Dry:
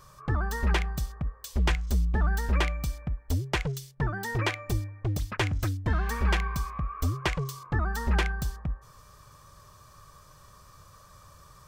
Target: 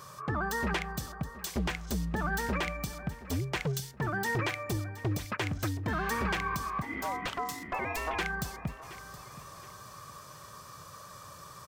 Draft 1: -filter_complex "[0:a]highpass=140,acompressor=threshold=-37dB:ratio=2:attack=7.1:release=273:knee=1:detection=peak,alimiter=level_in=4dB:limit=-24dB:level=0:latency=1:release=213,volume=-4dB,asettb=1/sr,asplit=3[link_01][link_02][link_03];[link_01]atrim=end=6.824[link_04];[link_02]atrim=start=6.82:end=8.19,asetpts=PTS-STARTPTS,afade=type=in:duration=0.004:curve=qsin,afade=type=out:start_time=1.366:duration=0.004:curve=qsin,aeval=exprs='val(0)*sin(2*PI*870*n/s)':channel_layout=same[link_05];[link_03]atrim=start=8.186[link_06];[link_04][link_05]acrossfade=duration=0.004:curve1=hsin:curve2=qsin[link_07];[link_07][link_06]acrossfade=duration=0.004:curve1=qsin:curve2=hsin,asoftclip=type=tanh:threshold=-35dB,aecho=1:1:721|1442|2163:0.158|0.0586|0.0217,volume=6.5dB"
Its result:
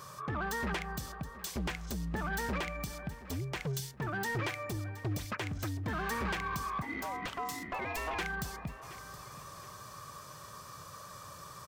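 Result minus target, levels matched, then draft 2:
soft clipping: distortion +17 dB; downward compressor: peak gain reduction +8.5 dB
-filter_complex "[0:a]highpass=140,alimiter=level_in=4dB:limit=-24dB:level=0:latency=1:release=213,volume=-4dB,asettb=1/sr,asplit=3[link_01][link_02][link_03];[link_01]atrim=end=6.824[link_04];[link_02]atrim=start=6.82:end=8.19,asetpts=PTS-STARTPTS,afade=type=in:duration=0.004:curve=qsin,afade=type=out:start_time=1.366:duration=0.004:curve=qsin,aeval=exprs='val(0)*sin(2*PI*870*n/s)':channel_layout=same[link_05];[link_03]atrim=start=8.186[link_06];[link_04][link_05]acrossfade=duration=0.004:curve1=hsin:curve2=qsin[link_07];[link_07][link_06]acrossfade=duration=0.004:curve1=qsin:curve2=hsin,asoftclip=type=tanh:threshold=-23dB,aecho=1:1:721|1442|2163:0.158|0.0586|0.0217,volume=6.5dB"

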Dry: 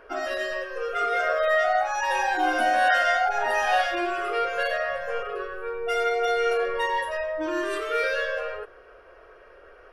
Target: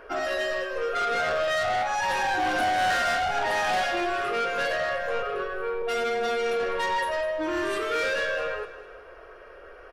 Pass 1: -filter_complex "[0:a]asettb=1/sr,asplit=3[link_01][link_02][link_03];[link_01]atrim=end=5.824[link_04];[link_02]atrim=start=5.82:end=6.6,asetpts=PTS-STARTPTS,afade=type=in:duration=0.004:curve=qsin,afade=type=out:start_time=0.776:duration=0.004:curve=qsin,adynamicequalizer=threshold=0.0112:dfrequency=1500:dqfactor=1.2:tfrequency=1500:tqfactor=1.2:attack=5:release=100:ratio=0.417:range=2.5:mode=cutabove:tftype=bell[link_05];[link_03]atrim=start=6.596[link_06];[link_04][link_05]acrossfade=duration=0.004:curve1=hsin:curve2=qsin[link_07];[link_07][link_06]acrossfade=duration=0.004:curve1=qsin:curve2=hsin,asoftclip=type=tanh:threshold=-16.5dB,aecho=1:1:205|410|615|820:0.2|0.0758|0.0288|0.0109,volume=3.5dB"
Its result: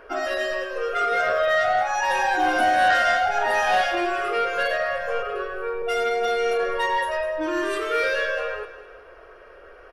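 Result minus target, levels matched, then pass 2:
soft clipping: distortion −10 dB
-filter_complex "[0:a]asettb=1/sr,asplit=3[link_01][link_02][link_03];[link_01]atrim=end=5.824[link_04];[link_02]atrim=start=5.82:end=6.6,asetpts=PTS-STARTPTS,afade=type=in:duration=0.004:curve=qsin,afade=type=out:start_time=0.776:duration=0.004:curve=qsin,adynamicequalizer=threshold=0.0112:dfrequency=1500:dqfactor=1.2:tfrequency=1500:tqfactor=1.2:attack=5:release=100:ratio=0.417:range=2.5:mode=cutabove:tftype=bell[link_05];[link_03]atrim=start=6.596[link_06];[link_04][link_05]acrossfade=duration=0.004:curve1=hsin:curve2=qsin[link_07];[link_07][link_06]acrossfade=duration=0.004:curve1=qsin:curve2=hsin,asoftclip=type=tanh:threshold=-26dB,aecho=1:1:205|410|615|820:0.2|0.0758|0.0288|0.0109,volume=3.5dB"

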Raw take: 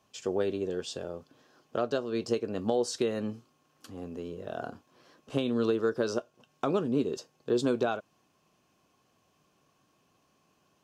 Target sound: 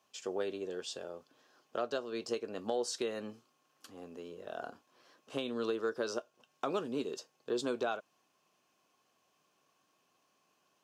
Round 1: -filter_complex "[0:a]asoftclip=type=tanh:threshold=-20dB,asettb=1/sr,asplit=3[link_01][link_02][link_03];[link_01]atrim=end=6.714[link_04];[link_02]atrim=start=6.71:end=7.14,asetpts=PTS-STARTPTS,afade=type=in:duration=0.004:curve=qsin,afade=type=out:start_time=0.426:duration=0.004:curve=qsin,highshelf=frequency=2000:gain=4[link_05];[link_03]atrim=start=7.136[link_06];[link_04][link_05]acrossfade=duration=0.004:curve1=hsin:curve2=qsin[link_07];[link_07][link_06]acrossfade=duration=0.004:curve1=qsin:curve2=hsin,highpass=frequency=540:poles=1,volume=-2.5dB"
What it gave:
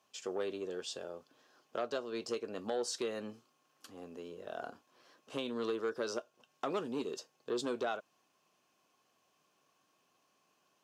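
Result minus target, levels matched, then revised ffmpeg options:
soft clipping: distortion +19 dB
-filter_complex "[0:a]asoftclip=type=tanh:threshold=-9dB,asettb=1/sr,asplit=3[link_01][link_02][link_03];[link_01]atrim=end=6.714[link_04];[link_02]atrim=start=6.71:end=7.14,asetpts=PTS-STARTPTS,afade=type=in:duration=0.004:curve=qsin,afade=type=out:start_time=0.426:duration=0.004:curve=qsin,highshelf=frequency=2000:gain=4[link_05];[link_03]atrim=start=7.136[link_06];[link_04][link_05]acrossfade=duration=0.004:curve1=hsin:curve2=qsin[link_07];[link_07][link_06]acrossfade=duration=0.004:curve1=qsin:curve2=hsin,highpass=frequency=540:poles=1,volume=-2.5dB"

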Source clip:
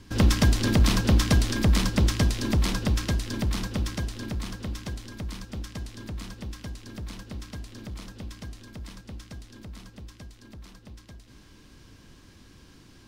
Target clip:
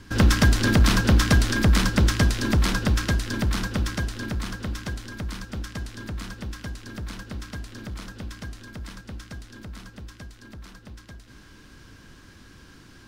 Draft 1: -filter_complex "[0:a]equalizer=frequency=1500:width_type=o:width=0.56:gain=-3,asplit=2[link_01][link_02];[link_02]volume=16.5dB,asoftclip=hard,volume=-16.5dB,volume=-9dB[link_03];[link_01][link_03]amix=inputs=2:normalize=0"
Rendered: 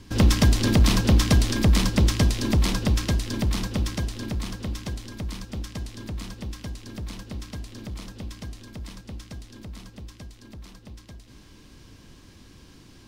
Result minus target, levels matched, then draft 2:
2,000 Hz band −6.0 dB
-filter_complex "[0:a]equalizer=frequency=1500:width_type=o:width=0.56:gain=7.5,asplit=2[link_01][link_02];[link_02]volume=16.5dB,asoftclip=hard,volume=-16.5dB,volume=-9dB[link_03];[link_01][link_03]amix=inputs=2:normalize=0"

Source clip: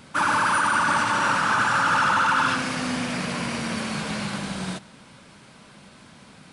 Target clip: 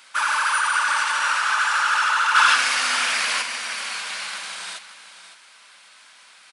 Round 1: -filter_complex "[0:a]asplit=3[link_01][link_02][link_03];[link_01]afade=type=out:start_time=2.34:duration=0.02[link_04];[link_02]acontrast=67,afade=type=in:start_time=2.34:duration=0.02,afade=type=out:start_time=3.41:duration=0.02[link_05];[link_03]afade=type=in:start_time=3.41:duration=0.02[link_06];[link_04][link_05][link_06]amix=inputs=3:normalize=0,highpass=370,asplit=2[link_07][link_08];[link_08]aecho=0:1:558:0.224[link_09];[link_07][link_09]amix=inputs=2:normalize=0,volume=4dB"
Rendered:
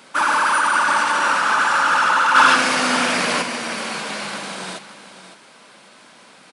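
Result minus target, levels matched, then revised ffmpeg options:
500 Hz band +12.0 dB
-filter_complex "[0:a]asplit=3[link_01][link_02][link_03];[link_01]afade=type=out:start_time=2.34:duration=0.02[link_04];[link_02]acontrast=67,afade=type=in:start_time=2.34:duration=0.02,afade=type=out:start_time=3.41:duration=0.02[link_05];[link_03]afade=type=in:start_time=3.41:duration=0.02[link_06];[link_04][link_05][link_06]amix=inputs=3:normalize=0,highpass=1400,asplit=2[link_07][link_08];[link_08]aecho=0:1:558:0.224[link_09];[link_07][link_09]amix=inputs=2:normalize=0,volume=4dB"

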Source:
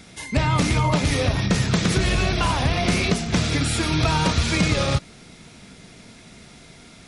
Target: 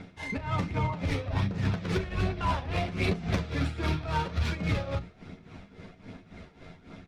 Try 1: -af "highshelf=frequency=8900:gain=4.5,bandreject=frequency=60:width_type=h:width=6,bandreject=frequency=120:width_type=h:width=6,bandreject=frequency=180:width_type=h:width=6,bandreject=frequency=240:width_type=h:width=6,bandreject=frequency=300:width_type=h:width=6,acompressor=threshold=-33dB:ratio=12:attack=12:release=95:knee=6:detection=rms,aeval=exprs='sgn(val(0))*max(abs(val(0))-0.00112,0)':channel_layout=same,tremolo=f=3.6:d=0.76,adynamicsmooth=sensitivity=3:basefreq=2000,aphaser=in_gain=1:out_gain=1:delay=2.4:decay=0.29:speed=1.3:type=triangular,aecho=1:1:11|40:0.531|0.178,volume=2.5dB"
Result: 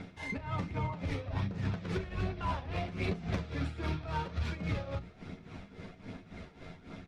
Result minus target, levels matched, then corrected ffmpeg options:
downward compressor: peak gain reduction +5.5 dB
-af "highshelf=frequency=8900:gain=4.5,bandreject=frequency=60:width_type=h:width=6,bandreject=frequency=120:width_type=h:width=6,bandreject=frequency=180:width_type=h:width=6,bandreject=frequency=240:width_type=h:width=6,bandreject=frequency=300:width_type=h:width=6,acompressor=threshold=-27dB:ratio=12:attack=12:release=95:knee=6:detection=rms,aeval=exprs='sgn(val(0))*max(abs(val(0))-0.00112,0)':channel_layout=same,tremolo=f=3.6:d=0.76,adynamicsmooth=sensitivity=3:basefreq=2000,aphaser=in_gain=1:out_gain=1:delay=2.4:decay=0.29:speed=1.3:type=triangular,aecho=1:1:11|40:0.531|0.178,volume=2.5dB"

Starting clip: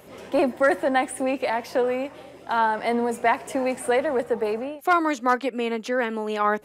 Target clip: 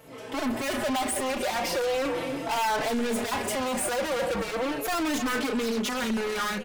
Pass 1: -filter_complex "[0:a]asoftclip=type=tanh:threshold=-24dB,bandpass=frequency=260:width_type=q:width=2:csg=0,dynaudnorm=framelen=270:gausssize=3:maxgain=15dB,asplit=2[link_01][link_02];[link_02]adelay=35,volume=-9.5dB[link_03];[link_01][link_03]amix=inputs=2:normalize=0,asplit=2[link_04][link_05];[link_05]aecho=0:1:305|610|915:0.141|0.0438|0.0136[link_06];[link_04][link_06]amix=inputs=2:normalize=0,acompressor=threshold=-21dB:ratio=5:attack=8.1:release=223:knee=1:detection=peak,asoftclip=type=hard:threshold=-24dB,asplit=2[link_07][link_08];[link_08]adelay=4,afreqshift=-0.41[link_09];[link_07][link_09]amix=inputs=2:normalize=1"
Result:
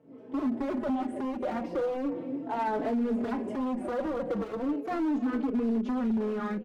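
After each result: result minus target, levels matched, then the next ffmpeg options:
downward compressor: peak gain reduction +9 dB; 250 Hz band +5.0 dB
-filter_complex "[0:a]asoftclip=type=tanh:threshold=-24dB,bandpass=frequency=260:width_type=q:width=2:csg=0,dynaudnorm=framelen=270:gausssize=3:maxgain=15dB,asplit=2[link_01][link_02];[link_02]adelay=35,volume=-9.5dB[link_03];[link_01][link_03]amix=inputs=2:normalize=0,asplit=2[link_04][link_05];[link_05]aecho=0:1:305|610|915:0.141|0.0438|0.0136[link_06];[link_04][link_06]amix=inputs=2:normalize=0,asoftclip=type=hard:threshold=-24dB,asplit=2[link_07][link_08];[link_08]adelay=4,afreqshift=-0.41[link_09];[link_07][link_09]amix=inputs=2:normalize=1"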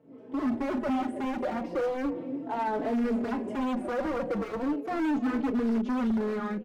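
250 Hz band +5.0 dB
-filter_complex "[0:a]asoftclip=type=tanh:threshold=-24dB,dynaudnorm=framelen=270:gausssize=3:maxgain=15dB,asplit=2[link_01][link_02];[link_02]adelay=35,volume=-9.5dB[link_03];[link_01][link_03]amix=inputs=2:normalize=0,asplit=2[link_04][link_05];[link_05]aecho=0:1:305|610|915:0.141|0.0438|0.0136[link_06];[link_04][link_06]amix=inputs=2:normalize=0,asoftclip=type=hard:threshold=-24dB,asplit=2[link_07][link_08];[link_08]adelay=4,afreqshift=-0.41[link_09];[link_07][link_09]amix=inputs=2:normalize=1"

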